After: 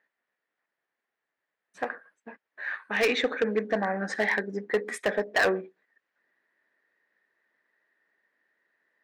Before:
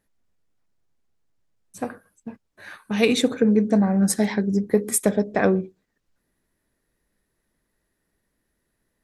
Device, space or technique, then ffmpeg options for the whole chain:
megaphone: -filter_complex "[0:a]highpass=520,lowpass=2.8k,equalizer=f=1.8k:t=o:w=0.43:g=11,asoftclip=type=hard:threshold=-19dB,asettb=1/sr,asplit=3[a][b][c];[a]atrim=end=3.074[d];[b]atrim=start=3.07:end=4.15,asetpts=PTS-STARTPTS,afade=t=in:d=0.004:c=qsin,afade=t=out:st=1.076:d=0.004:c=qsin,lowpass=f=7.4k:w=0.5412,lowpass=f=7.4k:w=1.3066[e];[c]atrim=start=4.146[f];[d][e]acrossfade=d=0.004:c1=hsin:c2=qsin[g];[g][f]acrossfade=d=0.004:c1=qsin:c2=hsin,volume=1dB"

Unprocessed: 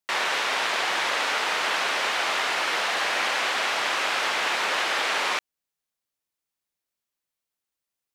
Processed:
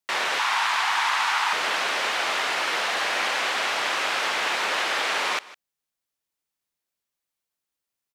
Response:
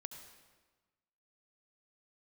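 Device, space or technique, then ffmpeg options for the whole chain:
ducked delay: -filter_complex "[0:a]asplit=3[a][b][c];[b]adelay=155,volume=-8dB[d];[c]apad=whole_len=365812[e];[d][e]sidechaincompress=threshold=-35dB:ratio=12:attack=27:release=706[f];[a][f]amix=inputs=2:normalize=0,asettb=1/sr,asplit=3[g][h][i];[g]atrim=end=0.394[j];[h]atrim=start=0.39:end=1.53,asetpts=PTS-STARTPTS,afade=t=in:d=0.004:c=qsin,afade=t=out:st=1.136:d=0.004:c=qsin,lowshelf=f=700:t=q:w=3:g=-9[k];[i]atrim=start=1.526[l];[j][k]acrossfade=d=0.004:c1=hsin:c2=qsin[m];[m][l]acrossfade=d=0.004:c1=qsin:c2=hsin"

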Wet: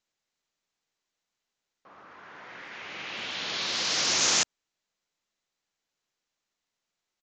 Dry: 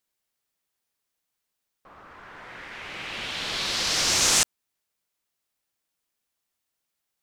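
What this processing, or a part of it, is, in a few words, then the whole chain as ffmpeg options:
Bluetooth headset: -af "highpass=150,aresample=16000,aresample=44100,volume=-2.5dB" -ar 16000 -c:a sbc -b:a 64k

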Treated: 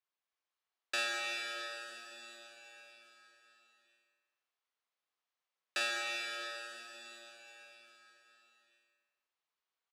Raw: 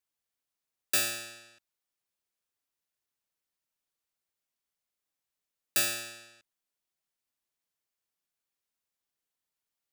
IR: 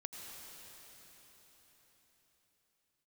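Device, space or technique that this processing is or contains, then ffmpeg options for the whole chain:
station announcement: -filter_complex "[0:a]highpass=470,lowpass=3.9k,equalizer=f=1.1k:t=o:w=0.38:g=4.5,aecho=1:1:46.65|201.2:0.501|0.282[a];[1:a]atrim=start_sample=2205[b];[a][b]afir=irnorm=-1:irlink=0,volume=2.5dB"

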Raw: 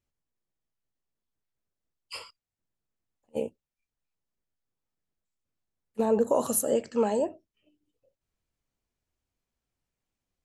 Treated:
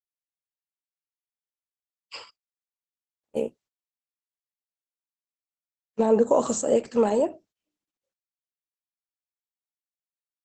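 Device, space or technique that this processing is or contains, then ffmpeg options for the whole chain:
video call: -filter_complex "[0:a]asettb=1/sr,asplit=3[a][b][c];[a]atrim=end=3.404[d];[b]atrim=start=3.4:end=6,asetpts=PTS-STARTPTS,afade=t=in:d=0.004:c=qsin,afade=t=out:st=2.596:d=0.004:c=qsin,highpass=f=63:p=1[e];[c]atrim=start=5.996[f];[d][e]acrossfade=d=0.004:c1=hsin:c2=qsin[g];[g][f]acrossfade=d=0.004:c1=qsin:c2=hsin,highpass=130,dynaudnorm=f=430:g=11:m=8dB,agate=range=-24dB:threshold=-50dB:ratio=16:detection=peak,volume=-3dB" -ar 48000 -c:a libopus -b:a 12k

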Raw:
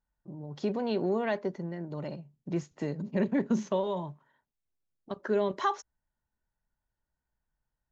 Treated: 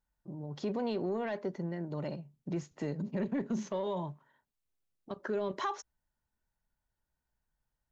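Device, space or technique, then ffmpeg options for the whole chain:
soft clipper into limiter: -af "asoftclip=type=tanh:threshold=-18.5dB,alimiter=level_in=2.5dB:limit=-24dB:level=0:latency=1:release=97,volume=-2.5dB"

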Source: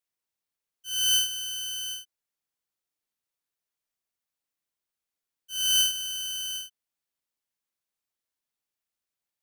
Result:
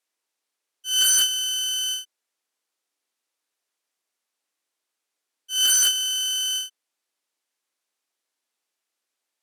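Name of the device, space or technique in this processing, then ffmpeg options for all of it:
overflowing digital effects unit: -af "aeval=exprs='(mod(11.2*val(0)+1,2)-1)/11.2':c=same,highpass=f=260:w=0.5412,highpass=f=260:w=1.3066,lowpass=11k,volume=8.5dB"

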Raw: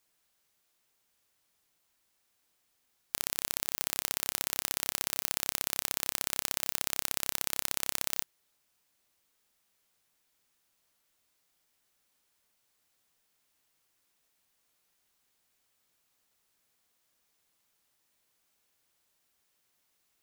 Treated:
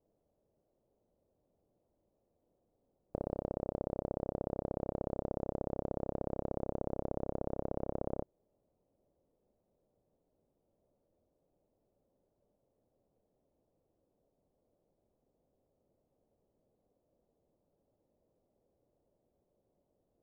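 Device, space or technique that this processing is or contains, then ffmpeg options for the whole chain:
under water: -af "lowpass=f=600:w=0.5412,lowpass=f=600:w=1.3066,equalizer=f=570:t=o:w=0.45:g=5,volume=10.5dB"

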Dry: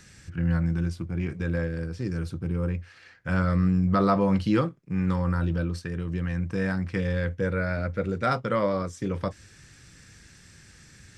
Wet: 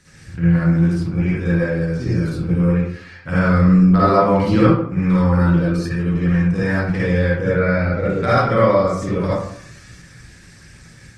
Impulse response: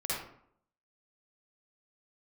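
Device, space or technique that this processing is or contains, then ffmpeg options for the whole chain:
speakerphone in a meeting room: -filter_complex "[0:a]asplit=3[a][b][c];[a]afade=t=out:st=7.44:d=0.02[d];[b]lowpass=6k,afade=t=in:st=7.44:d=0.02,afade=t=out:st=7.99:d=0.02[e];[c]afade=t=in:st=7.99:d=0.02[f];[d][e][f]amix=inputs=3:normalize=0[g];[1:a]atrim=start_sample=2205[h];[g][h]afir=irnorm=-1:irlink=0,dynaudnorm=f=110:g=3:m=3dB,volume=2dB" -ar 48000 -c:a libopus -b:a 20k

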